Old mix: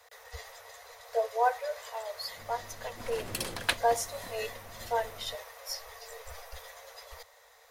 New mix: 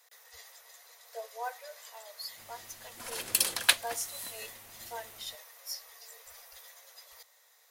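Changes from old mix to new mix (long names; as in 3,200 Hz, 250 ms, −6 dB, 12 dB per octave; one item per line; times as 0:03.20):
speech −10.5 dB
master: add spectral tilt +3.5 dB per octave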